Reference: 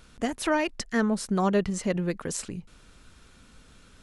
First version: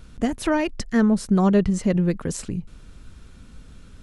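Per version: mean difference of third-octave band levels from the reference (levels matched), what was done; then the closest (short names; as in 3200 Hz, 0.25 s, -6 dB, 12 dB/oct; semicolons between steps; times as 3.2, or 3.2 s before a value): 4.0 dB: low shelf 300 Hz +12 dB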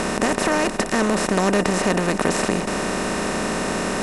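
15.5 dB: per-bin compression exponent 0.2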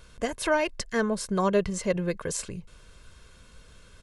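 2.0 dB: comb 1.9 ms, depth 52%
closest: third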